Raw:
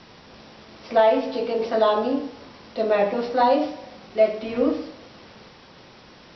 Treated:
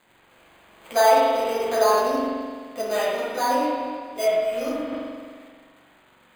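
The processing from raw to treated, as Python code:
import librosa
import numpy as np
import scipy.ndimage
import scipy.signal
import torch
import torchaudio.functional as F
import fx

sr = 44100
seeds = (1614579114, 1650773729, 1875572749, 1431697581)

y = fx.tilt_eq(x, sr, slope=3.5)
y = np.sign(y) * np.maximum(np.abs(y) - 10.0 ** (-44.5 / 20.0), 0.0)
y = np.repeat(scipy.signal.resample_poly(y, 1, 8), 8)[:len(y)]
y = fx.rev_spring(y, sr, rt60_s=1.7, pass_ms=(43,), chirp_ms=65, drr_db=-5.0)
y = fx.detune_double(y, sr, cents=fx.line((2.81, 15.0), (4.91, 30.0)), at=(2.81, 4.91), fade=0.02)
y = y * librosa.db_to_amplitude(-1.5)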